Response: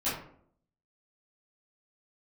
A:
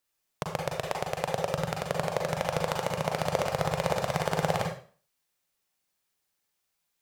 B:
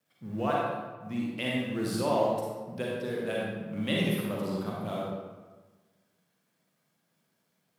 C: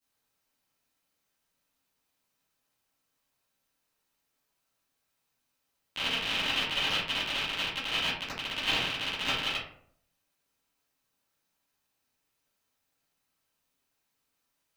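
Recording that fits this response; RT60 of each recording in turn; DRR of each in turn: C; 0.40, 1.3, 0.60 seconds; 0.5, −4.5, −13.0 decibels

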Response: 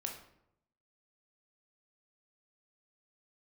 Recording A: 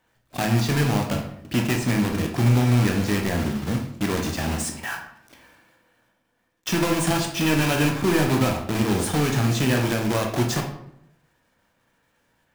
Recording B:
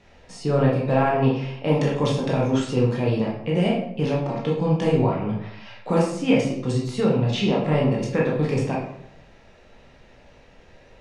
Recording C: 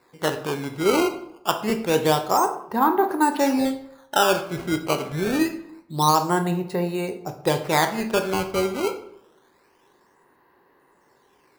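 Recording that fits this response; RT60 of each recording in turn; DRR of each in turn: A; 0.80, 0.75, 0.80 seconds; 1.5, −3.5, 6.5 decibels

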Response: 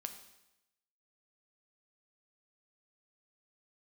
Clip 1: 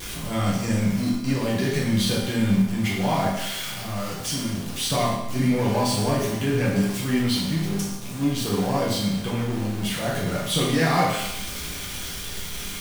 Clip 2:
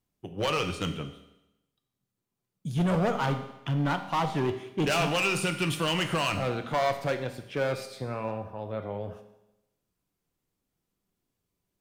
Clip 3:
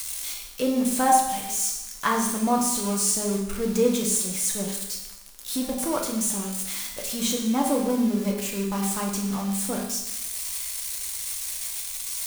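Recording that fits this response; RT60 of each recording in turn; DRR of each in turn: 2; 0.90, 0.90, 0.90 seconds; −6.5, 6.0, −1.0 decibels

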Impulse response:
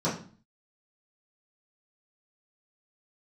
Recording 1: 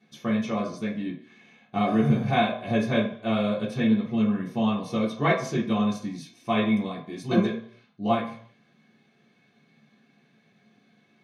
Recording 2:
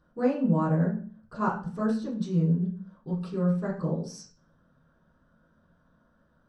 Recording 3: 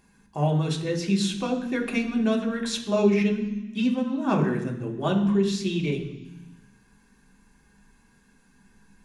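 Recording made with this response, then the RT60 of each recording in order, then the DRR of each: 2; 0.60, 0.40, 0.95 seconds; −7.5, −11.0, −1.0 decibels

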